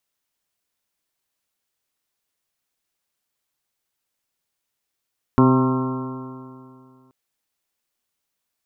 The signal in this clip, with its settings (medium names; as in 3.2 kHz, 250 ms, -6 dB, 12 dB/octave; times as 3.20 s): stretched partials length 1.73 s, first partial 129 Hz, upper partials 4/-2.5/-12/-13.5/-15/-8/-4/-16.5/-11 dB, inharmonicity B 0.00099, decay 2.38 s, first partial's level -16 dB